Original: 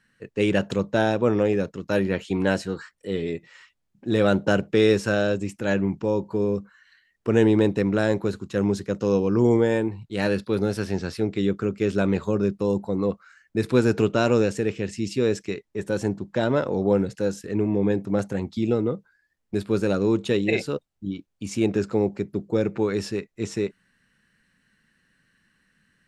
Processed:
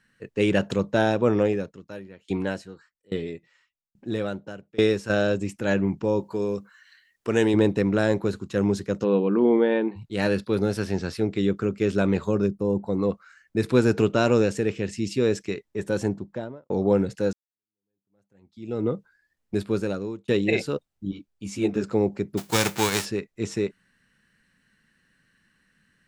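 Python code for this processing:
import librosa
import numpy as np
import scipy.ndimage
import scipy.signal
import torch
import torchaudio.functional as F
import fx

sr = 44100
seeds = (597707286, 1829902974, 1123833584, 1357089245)

y = fx.tremolo_decay(x, sr, direction='decaying', hz=1.2, depth_db=26, at=(1.45, 5.1))
y = fx.tilt_eq(y, sr, slope=2.0, at=(6.2, 7.54))
y = fx.brickwall_bandpass(y, sr, low_hz=150.0, high_hz=4600.0, at=(9.03, 9.95), fade=0.02)
y = fx.peak_eq(y, sr, hz=fx.line((12.46, 1800.0), (12.86, 7700.0)), db=-14.0, octaves=2.8, at=(12.46, 12.86), fade=0.02)
y = fx.studio_fade_out(y, sr, start_s=15.99, length_s=0.71)
y = fx.ensemble(y, sr, at=(21.11, 21.84))
y = fx.envelope_flatten(y, sr, power=0.3, at=(22.37, 23.04), fade=0.02)
y = fx.edit(y, sr, fx.fade_in_span(start_s=17.33, length_s=1.52, curve='exp'),
    fx.fade_out_span(start_s=19.6, length_s=0.68), tone=tone)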